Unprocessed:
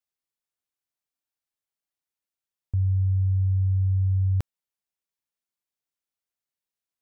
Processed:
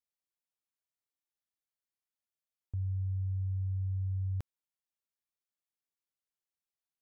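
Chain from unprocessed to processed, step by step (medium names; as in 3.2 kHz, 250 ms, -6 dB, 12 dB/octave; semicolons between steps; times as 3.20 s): peak limiter -23 dBFS, peak gain reduction 4 dB; trim -7 dB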